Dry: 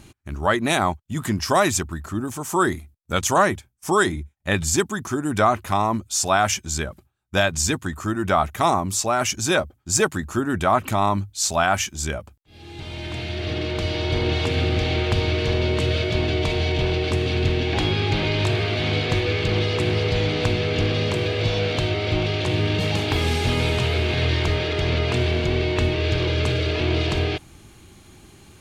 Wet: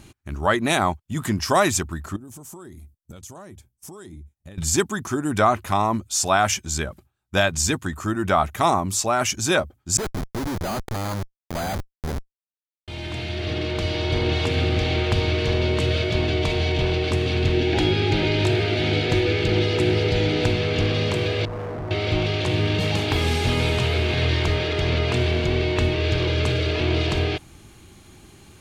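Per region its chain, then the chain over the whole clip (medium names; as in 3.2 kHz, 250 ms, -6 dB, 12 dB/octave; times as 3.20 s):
2.16–4.58 s: peaking EQ 1.7 kHz -11.5 dB 2.9 oct + compression 20:1, threshold -36 dBFS
9.97–12.88 s: CVSD coder 16 kbps + Schmitt trigger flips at -26 dBFS + careless resampling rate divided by 8×, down filtered, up hold
17.53–20.50 s: Butterworth band-stop 1.1 kHz, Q 6.1 + peaking EQ 340 Hz +6.5 dB 0.41 oct
21.45–21.91 s: low-pass 1.1 kHz 24 dB/octave + hard clipper -28.5 dBFS
whole clip: none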